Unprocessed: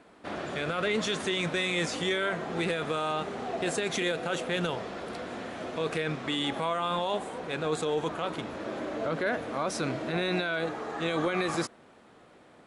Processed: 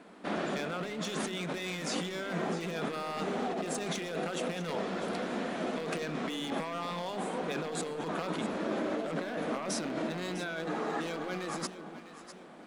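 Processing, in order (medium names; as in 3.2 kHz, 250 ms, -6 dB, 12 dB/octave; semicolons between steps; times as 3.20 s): one-sided wavefolder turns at -24.5 dBFS; compressor with a negative ratio -35 dBFS, ratio -1; resonant low shelf 150 Hz -6.5 dB, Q 3; echo whose repeats swap between lows and highs 326 ms, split 950 Hz, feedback 61%, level -9 dB; trim -1.5 dB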